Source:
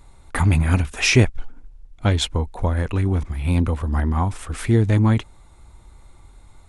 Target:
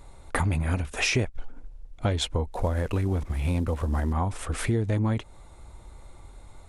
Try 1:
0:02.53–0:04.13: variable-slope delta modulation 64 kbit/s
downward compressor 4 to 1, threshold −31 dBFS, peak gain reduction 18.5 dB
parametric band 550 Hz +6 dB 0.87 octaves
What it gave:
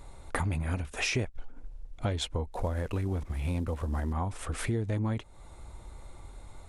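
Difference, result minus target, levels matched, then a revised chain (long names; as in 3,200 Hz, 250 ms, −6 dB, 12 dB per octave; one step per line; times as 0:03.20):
downward compressor: peak gain reduction +5.5 dB
0:02.53–0:04.13: variable-slope delta modulation 64 kbit/s
downward compressor 4 to 1, threshold −24 dBFS, peak gain reduction 13 dB
parametric band 550 Hz +6 dB 0.87 octaves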